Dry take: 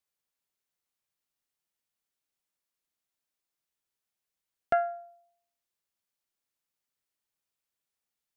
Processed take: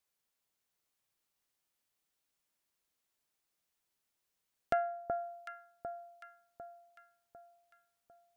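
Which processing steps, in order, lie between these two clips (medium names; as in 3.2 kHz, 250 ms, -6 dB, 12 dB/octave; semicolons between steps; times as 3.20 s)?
compression 1.5:1, threshold -45 dBFS, peak gain reduction 8.5 dB; echo whose repeats swap between lows and highs 375 ms, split 1.2 kHz, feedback 66%, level -4 dB; trim +2.5 dB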